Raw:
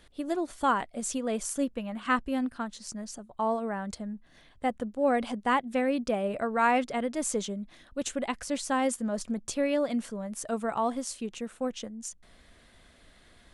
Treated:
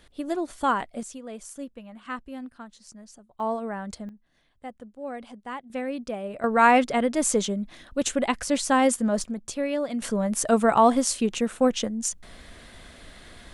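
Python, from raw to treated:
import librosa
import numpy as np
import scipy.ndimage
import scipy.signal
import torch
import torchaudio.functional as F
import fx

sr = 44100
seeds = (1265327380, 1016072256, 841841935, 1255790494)

y = fx.gain(x, sr, db=fx.steps((0.0, 2.0), (1.03, -8.0), (3.4, 0.5), (4.09, -10.0), (5.7, -3.5), (6.44, 7.0), (9.24, 0.0), (10.02, 11.0)))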